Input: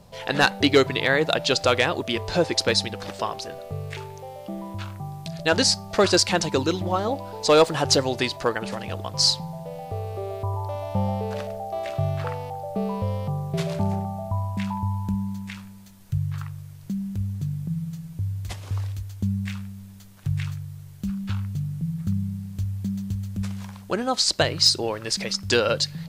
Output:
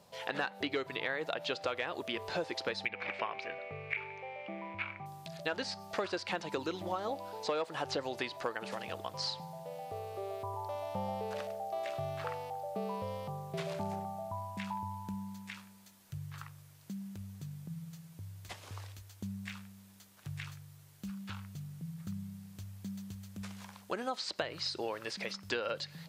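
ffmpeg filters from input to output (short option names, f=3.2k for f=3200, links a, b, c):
-filter_complex "[0:a]asettb=1/sr,asplit=3[a][b][c];[a]atrim=end=2.854[d];[b]atrim=start=2.85:end=5.06,asetpts=PTS-STARTPTS,afade=t=in:d=0.004:c=qsin,afade=t=out:st=2.206:d=0.004:c=qsin,lowpass=f=2.3k:t=q:w=12[e];[c]atrim=start=5.056[f];[d][e]acrossfade=d=0.004:c1=hsin:c2=qsin[g];[g][f]acrossfade=d=0.004:c1=qsin:c2=hsin,acrossover=split=3400[h][i];[i]acompressor=threshold=-43dB:ratio=4:attack=1:release=60[j];[h][j]amix=inputs=2:normalize=0,highpass=f=460:p=1,acompressor=threshold=-26dB:ratio=6,volume=-5.5dB"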